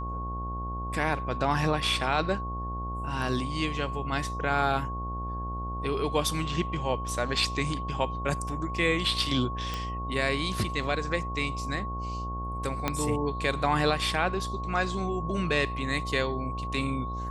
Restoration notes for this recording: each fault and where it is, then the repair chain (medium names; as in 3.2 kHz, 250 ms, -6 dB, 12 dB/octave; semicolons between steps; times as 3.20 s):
buzz 60 Hz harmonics 18 -35 dBFS
whine 1.1 kHz -35 dBFS
9.74 s: pop -18 dBFS
12.88 s: pop -11 dBFS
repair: de-click; de-hum 60 Hz, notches 18; band-stop 1.1 kHz, Q 30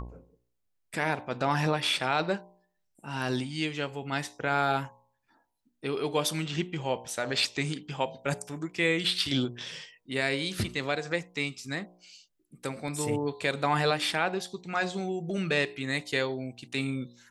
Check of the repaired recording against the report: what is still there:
12.88 s: pop